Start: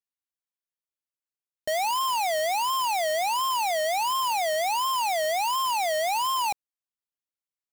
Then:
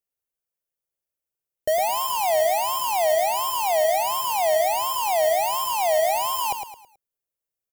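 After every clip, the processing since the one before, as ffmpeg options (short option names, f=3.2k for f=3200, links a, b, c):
-filter_complex "[0:a]equalizer=f=250:t=o:w=1:g=-8,equalizer=f=500:t=o:w=1:g=4,equalizer=f=1k:t=o:w=1:g=-8,equalizer=f=2k:t=o:w=1:g=-6,equalizer=f=4k:t=o:w=1:g=-10,equalizer=f=8k:t=o:w=1:g=-4,asplit=2[a][b];[b]aecho=0:1:108|216|324|432:0.447|0.161|0.0579|0.0208[c];[a][c]amix=inputs=2:normalize=0,volume=8dB"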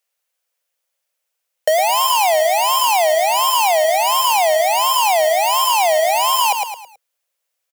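-af "lowshelf=f=110:t=q:w=1.5:g=-14,acompressor=threshold=-25dB:ratio=6,firequalizer=gain_entry='entry(130,0);entry(310,-28);entry(480,10);entry(2200,15);entry(15000,8)':delay=0.05:min_phase=1,volume=1.5dB"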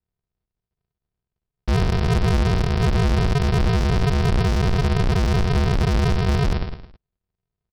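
-af "aresample=11025,acrusher=samples=39:mix=1:aa=0.000001,aresample=44100,volume=15.5dB,asoftclip=hard,volume=-15.5dB"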